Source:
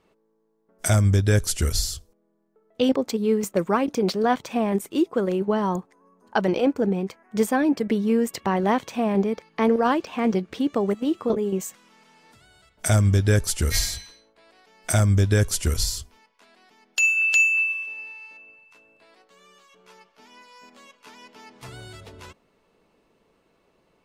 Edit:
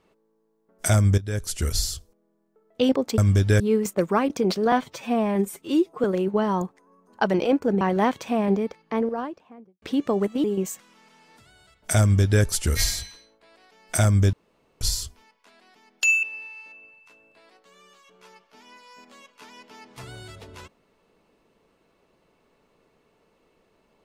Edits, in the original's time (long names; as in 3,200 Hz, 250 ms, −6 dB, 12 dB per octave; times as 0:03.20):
0:01.18–0:01.83: fade in, from −16 dB
0:04.30–0:05.18: time-stretch 1.5×
0:06.95–0:08.48: remove
0:09.04–0:10.49: fade out and dull
0:11.11–0:11.39: remove
0:12.96–0:13.38: duplicate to 0:03.18
0:15.28–0:15.76: fill with room tone
0:17.18–0:17.88: remove